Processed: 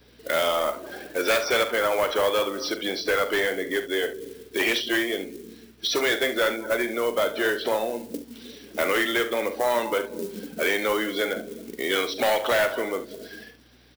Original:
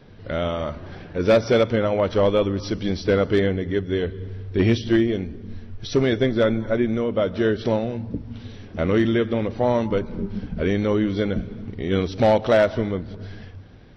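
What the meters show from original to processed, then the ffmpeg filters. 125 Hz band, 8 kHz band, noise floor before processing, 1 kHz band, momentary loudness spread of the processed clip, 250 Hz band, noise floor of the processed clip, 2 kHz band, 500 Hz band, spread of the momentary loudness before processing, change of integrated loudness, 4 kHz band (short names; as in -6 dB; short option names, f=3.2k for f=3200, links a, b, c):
-23.0 dB, n/a, -41 dBFS, +1.5 dB, 13 LU, -9.5 dB, -52 dBFS, +6.0 dB, -4.0 dB, 15 LU, -3.0 dB, +6.0 dB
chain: -filter_complex "[0:a]afftdn=nr=14:nf=-38,highpass=f=290:w=0.5412,highpass=f=290:w=1.3066,acrossover=split=570|1200|3200[a][b][c][d];[a]acompressor=threshold=-33dB:ratio=4[e];[b]acompressor=threshold=-27dB:ratio=4[f];[d]acompressor=threshold=-52dB:ratio=4[g];[e][f][c][g]amix=inputs=4:normalize=0,asplit=2[h][i];[i]acrusher=bits=4:mode=log:mix=0:aa=0.000001,volume=-8.5dB[j];[h][j]amix=inputs=2:normalize=0,aeval=exprs='val(0)+0.00126*(sin(2*PI*60*n/s)+sin(2*PI*2*60*n/s)/2+sin(2*PI*3*60*n/s)/3+sin(2*PI*4*60*n/s)/4+sin(2*PI*5*60*n/s)/5)':c=same,crystalizer=i=9.5:c=0,asoftclip=type=tanh:threshold=-16dB,asplit=2[k][l];[l]aecho=0:1:42|70:0.251|0.224[m];[k][m]amix=inputs=2:normalize=0,adynamicequalizer=threshold=0.0141:dfrequency=2000:dqfactor=0.7:tfrequency=2000:tqfactor=0.7:attack=5:release=100:ratio=0.375:range=3:mode=cutabove:tftype=highshelf"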